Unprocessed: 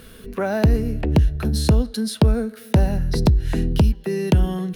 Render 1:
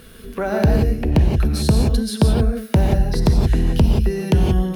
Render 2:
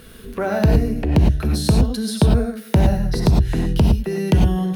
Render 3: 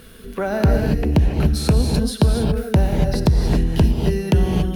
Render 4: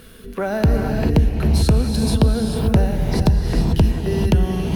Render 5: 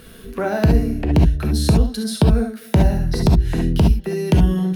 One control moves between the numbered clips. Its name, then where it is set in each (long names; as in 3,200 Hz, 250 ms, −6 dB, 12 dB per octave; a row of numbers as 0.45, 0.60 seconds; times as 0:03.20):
reverb whose tail is shaped and stops, gate: 200, 130, 310, 470, 90 milliseconds